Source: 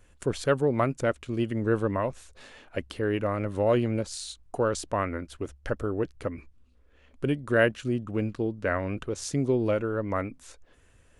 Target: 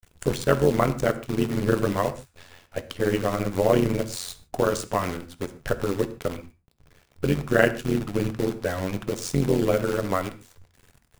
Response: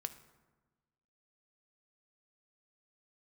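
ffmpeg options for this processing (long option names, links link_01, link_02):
-filter_complex "[0:a]acrusher=bits=7:dc=4:mix=0:aa=0.000001,tremolo=f=89:d=0.889[link_01];[1:a]atrim=start_sample=2205,afade=type=out:start_time=0.2:duration=0.01,atrim=end_sample=9261[link_02];[link_01][link_02]afir=irnorm=-1:irlink=0,volume=9dB"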